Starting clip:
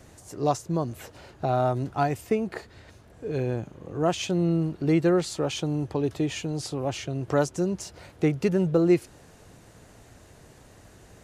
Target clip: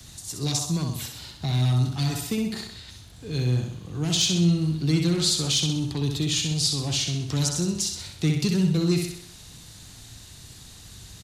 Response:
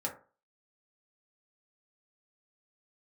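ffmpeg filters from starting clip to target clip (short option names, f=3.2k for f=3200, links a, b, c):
-filter_complex "[0:a]firequalizer=gain_entry='entry(140,0);entry(560,-25);entry(1500,-21);entry(3700,10);entry(6000,6)':delay=0.05:min_phase=1,aecho=1:1:64|128|192|256|320|384:0.501|0.241|0.115|0.0554|0.0266|0.0128,acrossover=split=130|770|1600[a][b][c][d];[c]aeval=exprs='0.00841*sin(PI/2*6.31*val(0)/0.00841)':c=same[e];[a][b][e][d]amix=inputs=4:normalize=0,volume=5dB"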